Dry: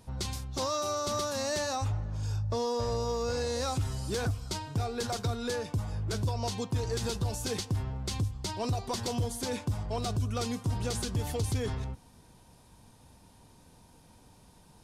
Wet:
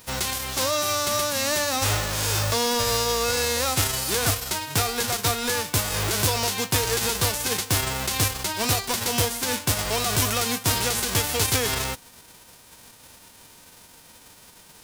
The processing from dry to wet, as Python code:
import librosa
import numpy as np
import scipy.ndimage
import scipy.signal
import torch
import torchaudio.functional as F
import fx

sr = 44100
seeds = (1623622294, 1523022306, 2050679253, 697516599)

y = fx.envelope_flatten(x, sr, power=0.3)
y = y * librosa.db_to_amplitude(7.5)